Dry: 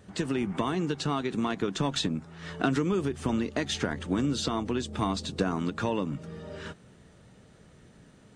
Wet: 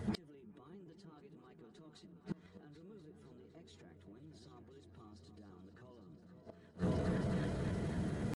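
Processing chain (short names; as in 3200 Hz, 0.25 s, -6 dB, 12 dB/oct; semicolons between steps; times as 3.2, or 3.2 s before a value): bin magnitudes rounded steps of 15 dB; tilt shelf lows +4.5 dB; in parallel at 0 dB: compressor 6:1, threshold -35 dBFS, peak gain reduction 15.5 dB; on the sum: limiter -20 dBFS, peak gain reduction 10.5 dB; reverse; upward compressor, threshold -34 dBFS; reverse; notch comb 240 Hz; repeats that get brighter 0.257 s, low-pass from 400 Hz, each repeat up 2 oct, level -6 dB; pitch shift +1.5 st; flipped gate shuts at -24 dBFS, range -31 dB; soft clip -28 dBFS, distortion -22 dB; gain +2 dB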